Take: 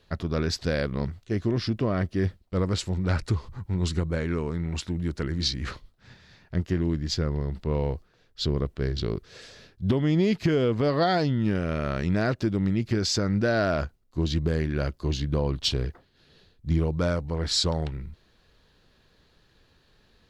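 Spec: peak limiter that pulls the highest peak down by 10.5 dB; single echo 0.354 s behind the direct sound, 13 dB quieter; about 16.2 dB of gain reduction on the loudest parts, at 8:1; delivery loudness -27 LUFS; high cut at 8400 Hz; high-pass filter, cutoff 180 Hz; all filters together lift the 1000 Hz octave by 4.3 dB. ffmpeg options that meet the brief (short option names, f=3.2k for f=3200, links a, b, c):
-af "highpass=180,lowpass=8.4k,equalizer=f=1k:t=o:g=6.5,acompressor=threshold=-35dB:ratio=8,alimiter=level_in=6.5dB:limit=-24dB:level=0:latency=1,volume=-6.5dB,aecho=1:1:354:0.224,volume=15dB"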